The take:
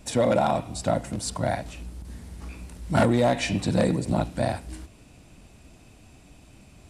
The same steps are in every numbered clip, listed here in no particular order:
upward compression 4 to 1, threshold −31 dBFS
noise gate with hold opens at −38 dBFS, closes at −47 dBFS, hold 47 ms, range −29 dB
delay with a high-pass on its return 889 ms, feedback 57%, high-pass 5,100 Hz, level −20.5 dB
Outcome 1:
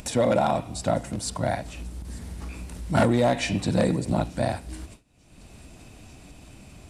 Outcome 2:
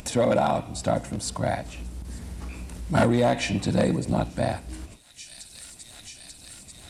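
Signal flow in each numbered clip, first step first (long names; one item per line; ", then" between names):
delay with a high-pass on its return, then noise gate with hold, then upward compression
noise gate with hold, then delay with a high-pass on its return, then upward compression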